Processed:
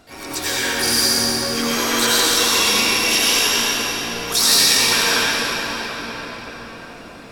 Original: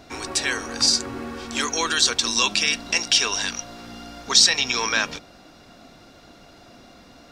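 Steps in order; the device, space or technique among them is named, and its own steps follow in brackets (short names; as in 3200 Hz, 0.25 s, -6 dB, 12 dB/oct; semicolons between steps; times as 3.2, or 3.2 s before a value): shimmer-style reverb (harmoniser +12 st -5 dB; reverb RT60 5.8 s, pre-delay 79 ms, DRR -10.5 dB); gain -5 dB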